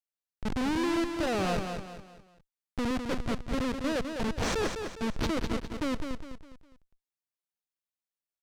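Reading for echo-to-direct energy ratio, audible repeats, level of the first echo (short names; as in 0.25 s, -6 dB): -6.0 dB, 4, -6.5 dB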